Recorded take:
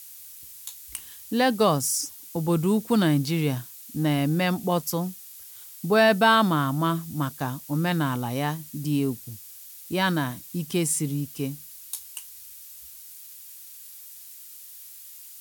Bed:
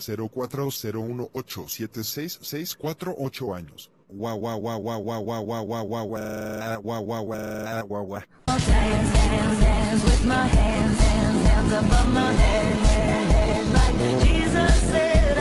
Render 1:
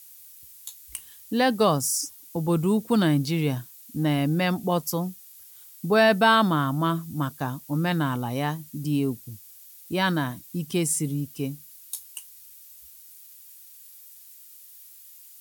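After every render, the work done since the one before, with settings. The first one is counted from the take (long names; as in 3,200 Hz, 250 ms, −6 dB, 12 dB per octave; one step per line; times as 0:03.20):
broadband denoise 6 dB, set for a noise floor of −45 dBFS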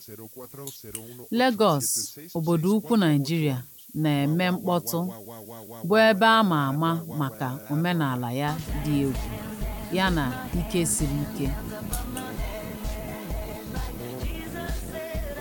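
mix in bed −13.5 dB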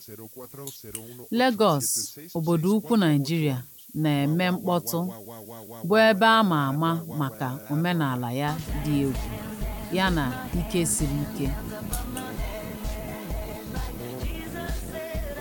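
no processing that can be heard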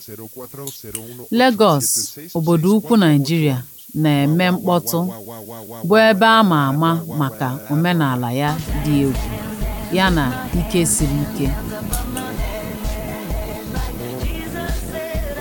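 level +8 dB
brickwall limiter −2 dBFS, peak gain reduction 2.5 dB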